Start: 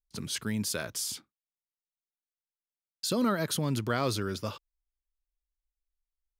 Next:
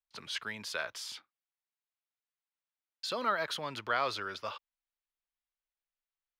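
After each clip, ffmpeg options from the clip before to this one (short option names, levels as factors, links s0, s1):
-filter_complex "[0:a]acrossover=split=590 4200:gain=0.0794 1 0.1[s0][s1][s2];[s0][s1][s2]amix=inputs=3:normalize=0,volume=1.33"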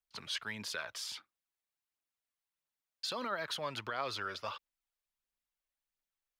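-af "alimiter=level_in=1.5:limit=0.0631:level=0:latency=1:release=172,volume=0.668,aphaser=in_gain=1:out_gain=1:delay=1.9:decay=0.36:speed=1.5:type=triangular"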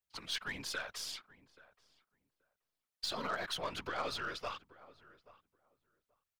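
-filter_complex "[0:a]afftfilt=real='hypot(re,im)*cos(2*PI*random(0))':imag='hypot(re,im)*sin(2*PI*random(1))':win_size=512:overlap=0.75,aeval=exprs='0.0316*(cos(1*acos(clip(val(0)/0.0316,-1,1)))-cos(1*PI/2))+0.00126*(cos(6*acos(clip(val(0)/0.0316,-1,1)))-cos(6*PI/2))+0.00224*(cos(8*acos(clip(val(0)/0.0316,-1,1)))-cos(8*PI/2))':c=same,asplit=2[s0][s1];[s1]adelay=830,lowpass=f=1300:p=1,volume=0.119,asplit=2[s2][s3];[s3]adelay=830,lowpass=f=1300:p=1,volume=0.16[s4];[s0][s2][s4]amix=inputs=3:normalize=0,volume=1.88"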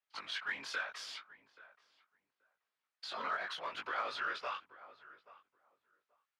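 -af "alimiter=level_in=2.24:limit=0.0631:level=0:latency=1:release=377,volume=0.447,flanger=delay=18.5:depth=3.5:speed=0.78,bandpass=f=1500:t=q:w=0.86:csg=0,volume=2.82"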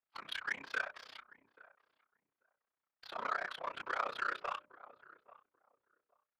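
-af "tremolo=f=31:d=0.947,adynamicsmooth=sensitivity=7.5:basefreq=1800,bandreject=f=60:t=h:w=6,bandreject=f=120:t=h:w=6,bandreject=f=180:t=h:w=6,bandreject=f=240:t=h:w=6,bandreject=f=300:t=h:w=6,bandreject=f=360:t=h:w=6,bandreject=f=420:t=h:w=6,bandreject=f=480:t=h:w=6,bandreject=f=540:t=h:w=6,bandreject=f=600:t=h:w=6,volume=1.88"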